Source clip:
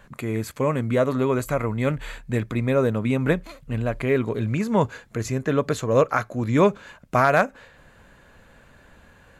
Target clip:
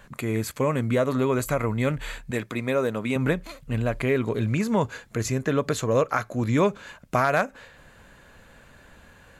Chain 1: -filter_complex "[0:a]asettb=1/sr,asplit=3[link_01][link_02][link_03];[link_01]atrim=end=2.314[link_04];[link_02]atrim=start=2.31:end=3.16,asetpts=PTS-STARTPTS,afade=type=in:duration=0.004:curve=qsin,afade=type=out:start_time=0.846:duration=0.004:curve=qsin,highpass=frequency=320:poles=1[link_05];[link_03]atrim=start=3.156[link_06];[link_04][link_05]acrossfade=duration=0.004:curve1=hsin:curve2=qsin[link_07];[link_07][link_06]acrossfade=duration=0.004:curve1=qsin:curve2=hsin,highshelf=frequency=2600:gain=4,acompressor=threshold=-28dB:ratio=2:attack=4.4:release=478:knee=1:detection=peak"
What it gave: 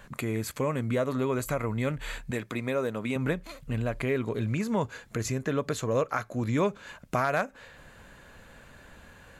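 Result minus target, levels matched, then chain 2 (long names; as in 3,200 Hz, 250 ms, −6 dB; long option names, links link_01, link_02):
downward compressor: peak gain reduction +5 dB
-filter_complex "[0:a]asettb=1/sr,asplit=3[link_01][link_02][link_03];[link_01]atrim=end=2.314[link_04];[link_02]atrim=start=2.31:end=3.16,asetpts=PTS-STARTPTS,afade=type=in:duration=0.004:curve=qsin,afade=type=out:start_time=0.846:duration=0.004:curve=qsin,highpass=frequency=320:poles=1[link_05];[link_03]atrim=start=3.156[link_06];[link_04][link_05]acrossfade=duration=0.004:curve1=hsin:curve2=qsin[link_07];[link_07][link_06]acrossfade=duration=0.004:curve1=qsin:curve2=hsin,highshelf=frequency=2600:gain=4,acompressor=threshold=-18dB:ratio=2:attack=4.4:release=478:knee=1:detection=peak"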